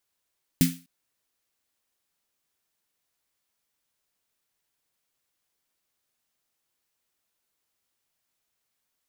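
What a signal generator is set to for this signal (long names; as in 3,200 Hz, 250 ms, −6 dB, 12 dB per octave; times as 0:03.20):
synth snare length 0.25 s, tones 170 Hz, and 260 Hz, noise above 1,700 Hz, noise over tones −7.5 dB, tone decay 0.30 s, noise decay 0.33 s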